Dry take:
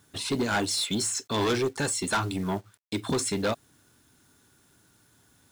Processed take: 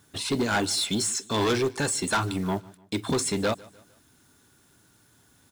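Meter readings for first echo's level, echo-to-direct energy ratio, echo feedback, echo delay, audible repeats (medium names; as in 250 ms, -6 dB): -23.0 dB, -22.0 dB, 42%, 150 ms, 2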